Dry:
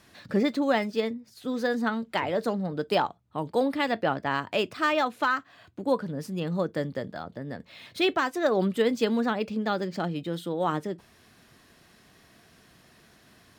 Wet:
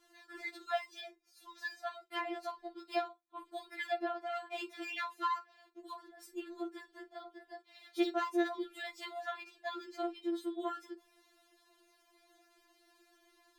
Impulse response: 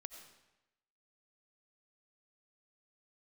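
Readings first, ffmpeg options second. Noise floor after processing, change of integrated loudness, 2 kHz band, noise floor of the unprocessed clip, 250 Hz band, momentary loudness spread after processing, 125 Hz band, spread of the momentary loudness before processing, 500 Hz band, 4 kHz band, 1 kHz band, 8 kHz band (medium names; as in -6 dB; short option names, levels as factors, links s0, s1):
-71 dBFS, -12.0 dB, -11.5 dB, -59 dBFS, -13.0 dB, 16 LU, under -40 dB, 11 LU, -13.5 dB, -11.5 dB, -10.0 dB, -10.5 dB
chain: -filter_complex "[1:a]atrim=start_sample=2205,afade=t=out:st=0.14:d=0.01,atrim=end_sample=6615,asetrate=83790,aresample=44100[s0];[0:a][s0]afir=irnorm=-1:irlink=0,afftfilt=real='re*4*eq(mod(b,16),0)':imag='im*4*eq(mod(b,16),0)':win_size=2048:overlap=0.75,volume=1.5"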